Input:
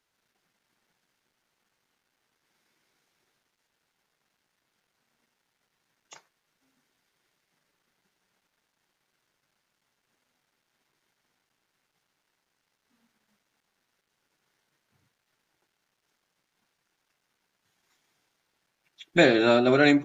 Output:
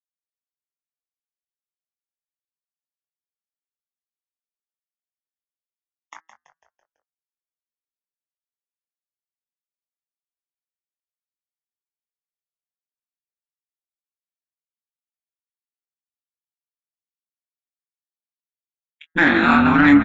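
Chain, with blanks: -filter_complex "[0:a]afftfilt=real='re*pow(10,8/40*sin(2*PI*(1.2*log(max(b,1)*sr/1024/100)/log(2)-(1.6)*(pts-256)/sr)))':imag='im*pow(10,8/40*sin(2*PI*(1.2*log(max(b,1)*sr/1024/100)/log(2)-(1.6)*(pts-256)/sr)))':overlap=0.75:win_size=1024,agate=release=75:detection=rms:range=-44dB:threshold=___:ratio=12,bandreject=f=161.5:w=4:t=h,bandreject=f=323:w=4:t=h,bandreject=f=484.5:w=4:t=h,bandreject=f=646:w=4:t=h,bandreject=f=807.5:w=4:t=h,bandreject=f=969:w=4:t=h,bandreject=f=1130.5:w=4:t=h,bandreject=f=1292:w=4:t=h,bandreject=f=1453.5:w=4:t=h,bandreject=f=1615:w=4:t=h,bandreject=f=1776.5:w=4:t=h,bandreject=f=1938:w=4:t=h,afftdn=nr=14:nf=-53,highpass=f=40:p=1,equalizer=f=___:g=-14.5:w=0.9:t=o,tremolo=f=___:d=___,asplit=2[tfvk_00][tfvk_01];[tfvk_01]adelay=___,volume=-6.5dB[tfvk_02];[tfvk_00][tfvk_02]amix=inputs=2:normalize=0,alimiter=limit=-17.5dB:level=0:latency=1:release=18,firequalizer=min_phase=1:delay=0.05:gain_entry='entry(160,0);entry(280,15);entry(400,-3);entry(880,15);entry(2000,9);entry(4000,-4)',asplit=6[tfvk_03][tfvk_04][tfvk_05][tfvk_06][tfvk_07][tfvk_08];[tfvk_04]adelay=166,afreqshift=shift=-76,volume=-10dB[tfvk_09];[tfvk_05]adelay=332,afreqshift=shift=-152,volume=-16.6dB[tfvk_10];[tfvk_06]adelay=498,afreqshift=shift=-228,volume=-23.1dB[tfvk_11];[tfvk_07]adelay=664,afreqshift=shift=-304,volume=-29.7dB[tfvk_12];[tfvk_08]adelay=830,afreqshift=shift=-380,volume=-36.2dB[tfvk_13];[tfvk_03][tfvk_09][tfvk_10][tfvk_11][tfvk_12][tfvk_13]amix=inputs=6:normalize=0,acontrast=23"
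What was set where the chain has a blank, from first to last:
-47dB, 500, 160, 1, 21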